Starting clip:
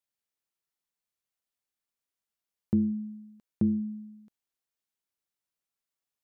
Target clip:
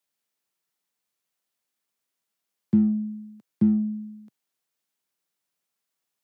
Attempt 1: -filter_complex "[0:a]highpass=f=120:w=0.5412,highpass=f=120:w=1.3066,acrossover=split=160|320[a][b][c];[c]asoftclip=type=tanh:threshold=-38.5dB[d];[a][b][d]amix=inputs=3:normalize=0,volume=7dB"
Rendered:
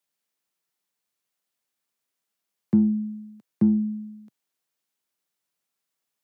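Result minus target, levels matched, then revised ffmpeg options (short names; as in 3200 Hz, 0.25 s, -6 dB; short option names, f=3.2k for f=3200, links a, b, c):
soft clip: distortion -8 dB
-filter_complex "[0:a]highpass=f=120:w=0.5412,highpass=f=120:w=1.3066,acrossover=split=160|320[a][b][c];[c]asoftclip=type=tanh:threshold=-49.5dB[d];[a][b][d]amix=inputs=3:normalize=0,volume=7dB"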